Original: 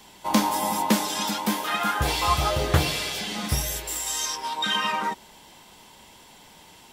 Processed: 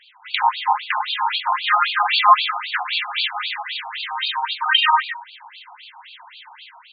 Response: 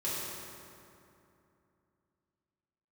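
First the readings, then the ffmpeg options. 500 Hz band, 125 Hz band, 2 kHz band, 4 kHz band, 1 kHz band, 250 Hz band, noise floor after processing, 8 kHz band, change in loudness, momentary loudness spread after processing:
-8.5 dB, under -40 dB, +8.0 dB, +6.5 dB, +8.0 dB, under -40 dB, -48 dBFS, under -40 dB, +5.5 dB, 12 LU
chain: -af "dynaudnorm=f=100:g=5:m=9.5dB,bandreject=f=135.7:t=h:w=4,bandreject=f=271.4:t=h:w=4,bandreject=f=407.1:t=h:w=4,bandreject=f=542.8:t=h:w=4,bandreject=f=678.5:t=h:w=4,bandreject=f=814.2:t=h:w=4,bandreject=f=949.9:t=h:w=4,afftfilt=real='re*between(b*sr/1024,950*pow(3400/950,0.5+0.5*sin(2*PI*3.8*pts/sr))/1.41,950*pow(3400/950,0.5+0.5*sin(2*PI*3.8*pts/sr))*1.41)':imag='im*between(b*sr/1024,950*pow(3400/950,0.5+0.5*sin(2*PI*3.8*pts/sr))/1.41,950*pow(3400/950,0.5+0.5*sin(2*PI*3.8*pts/sr))*1.41)':win_size=1024:overlap=0.75,volume=5dB"

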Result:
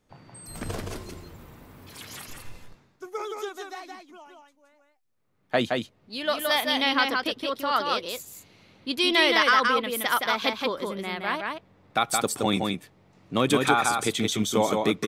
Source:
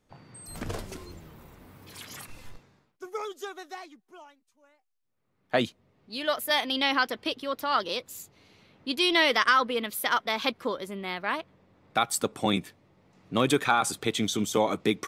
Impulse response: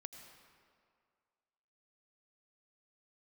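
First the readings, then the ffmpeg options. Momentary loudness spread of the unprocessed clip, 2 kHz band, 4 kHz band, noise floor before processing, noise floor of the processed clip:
20 LU, +2.5 dB, +2.5 dB, -74 dBFS, -66 dBFS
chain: -af "aecho=1:1:170:0.668,volume=1dB"

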